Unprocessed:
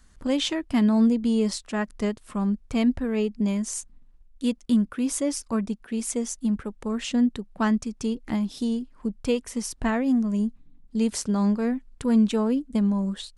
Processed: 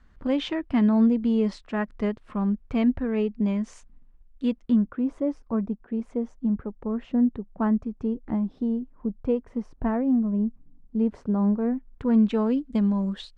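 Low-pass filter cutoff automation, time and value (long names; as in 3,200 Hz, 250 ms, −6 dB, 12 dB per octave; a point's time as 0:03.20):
0:04.57 2,400 Hz
0:05.04 1,000 Hz
0:11.61 1,000 Hz
0:12.27 2,300 Hz
0:12.51 3,800 Hz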